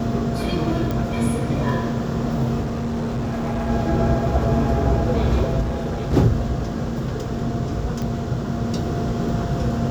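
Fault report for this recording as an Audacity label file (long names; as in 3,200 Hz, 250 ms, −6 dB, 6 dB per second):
0.910000	0.910000	click
2.610000	3.700000	clipping −21 dBFS
5.610000	6.140000	clipping −20.5 dBFS
8.020000	8.020000	click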